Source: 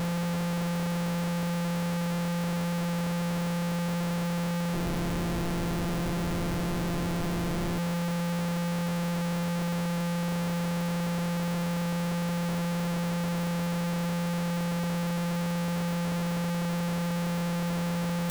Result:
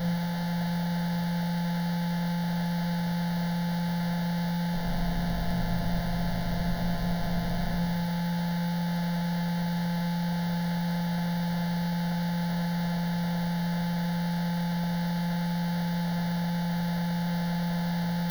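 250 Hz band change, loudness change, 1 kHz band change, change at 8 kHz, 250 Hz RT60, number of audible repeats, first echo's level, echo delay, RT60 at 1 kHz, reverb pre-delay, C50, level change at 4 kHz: +1.0 dB, +0.5 dB, +0.5 dB, -7.5 dB, 1.4 s, none, none, none, 1.0 s, 3 ms, 5.5 dB, 0.0 dB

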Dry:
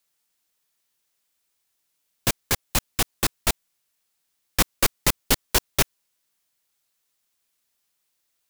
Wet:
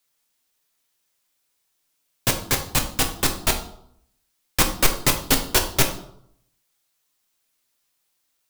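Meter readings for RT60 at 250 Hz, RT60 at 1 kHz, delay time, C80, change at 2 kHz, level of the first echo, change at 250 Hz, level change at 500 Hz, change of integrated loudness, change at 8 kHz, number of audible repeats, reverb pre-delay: 0.75 s, 0.65 s, none, 13.0 dB, +2.5 dB, none, +3.5 dB, +3.0 dB, +2.5 dB, +2.5 dB, none, 7 ms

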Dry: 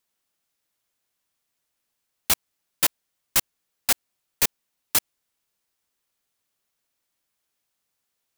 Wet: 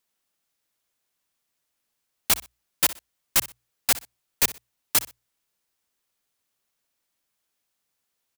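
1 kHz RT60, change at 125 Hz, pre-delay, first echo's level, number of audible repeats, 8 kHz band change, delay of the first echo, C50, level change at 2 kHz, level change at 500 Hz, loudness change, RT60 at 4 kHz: none, -0.5 dB, none, -17.0 dB, 2, 0.0 dB, 62 ms, none, 0.0 dB, 0.0 dB, 0.0 dB, none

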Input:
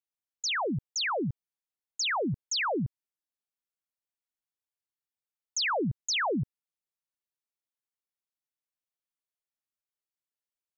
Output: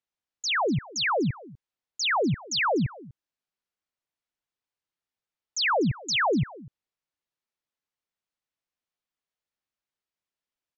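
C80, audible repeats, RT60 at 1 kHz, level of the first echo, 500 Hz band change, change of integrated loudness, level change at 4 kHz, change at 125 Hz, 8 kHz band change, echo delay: none, 1, none, -20.5 dB, +5.5 dB, +4.0 dB, +3.0 dB, +5.5 dB, n/a, 0.246 s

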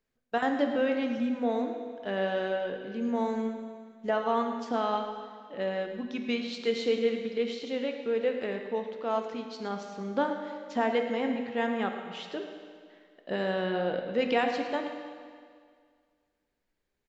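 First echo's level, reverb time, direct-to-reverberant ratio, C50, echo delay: -13.5 dB, 2.0 s, 4.0 dB, 5.0 dB, 0.109 s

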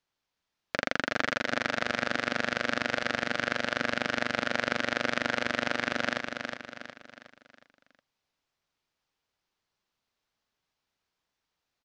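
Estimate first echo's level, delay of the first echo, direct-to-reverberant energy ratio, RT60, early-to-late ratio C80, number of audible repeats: -5.5 dB, 0.364 s, none, none, none, 5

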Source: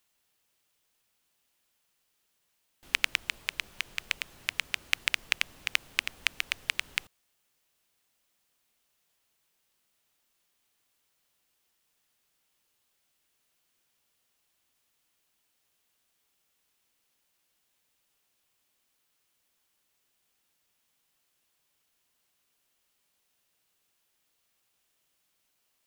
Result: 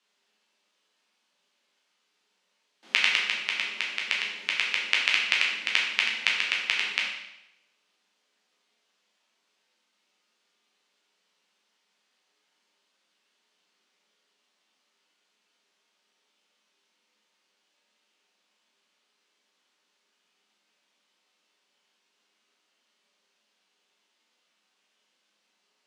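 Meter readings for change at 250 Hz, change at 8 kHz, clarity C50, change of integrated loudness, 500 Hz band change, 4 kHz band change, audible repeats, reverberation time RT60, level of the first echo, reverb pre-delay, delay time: +5.0 dB, -0.5 dB, 3.0 dB, +6.0 dB, +6.5 dB, +6.0 dB, none, 0.90 s, none, 10 ms, none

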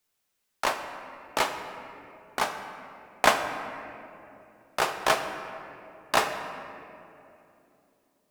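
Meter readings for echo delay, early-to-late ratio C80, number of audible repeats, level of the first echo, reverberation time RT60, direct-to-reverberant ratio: none, 8.0 dB, none, none, 2.9 s, 5.0 dB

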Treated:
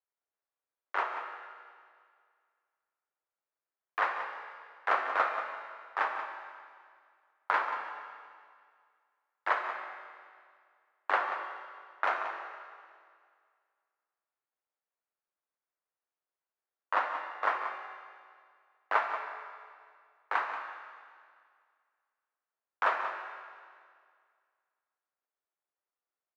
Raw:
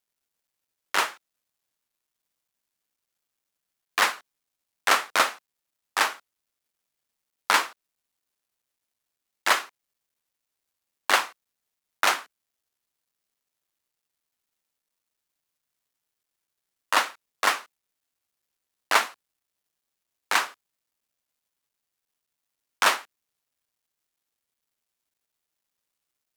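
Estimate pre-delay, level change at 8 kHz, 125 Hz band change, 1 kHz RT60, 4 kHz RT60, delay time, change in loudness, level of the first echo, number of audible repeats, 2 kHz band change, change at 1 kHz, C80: 18 ms, under -30 dB, n/a, 2.0 s, 2.0 s, 0.183 s, -9.0 dB, -10.5 dB, 1, -7.5 dB, -4.0 dB, 5.0 dB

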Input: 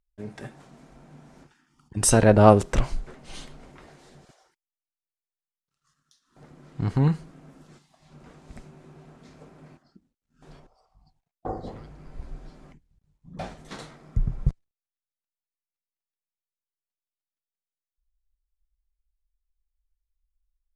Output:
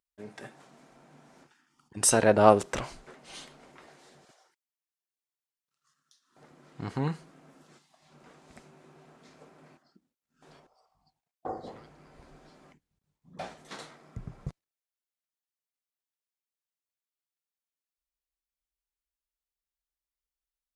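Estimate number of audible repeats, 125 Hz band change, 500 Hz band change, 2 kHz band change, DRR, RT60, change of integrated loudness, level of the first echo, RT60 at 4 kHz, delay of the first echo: none, -12.5 dB, -3.5 dB, -2.0 dB, none, none, -4.0 dB, none, none, none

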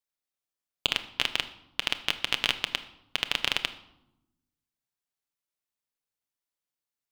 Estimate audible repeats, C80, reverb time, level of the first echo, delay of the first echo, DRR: none, 16.5 dB, 0.90 s, none, none, 8.5 dB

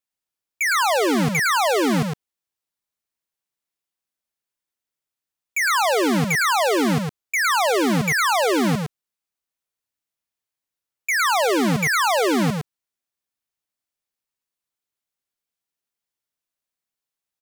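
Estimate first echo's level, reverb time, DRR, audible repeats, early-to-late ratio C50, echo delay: -5.0 dB, none, none, 1, none, 0.109 s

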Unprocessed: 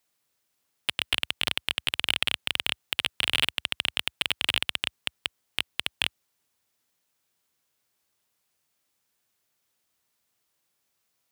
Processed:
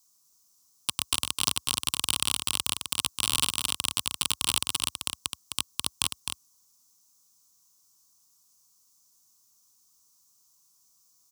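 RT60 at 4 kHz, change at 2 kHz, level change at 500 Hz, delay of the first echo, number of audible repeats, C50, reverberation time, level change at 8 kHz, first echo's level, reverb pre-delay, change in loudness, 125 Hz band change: none, -8.5 dB, -5.0 dB, 0.259 s, 1, none, none, +12.5 dB, -6.0 dB, none, 0.0 dB, +3.0 dB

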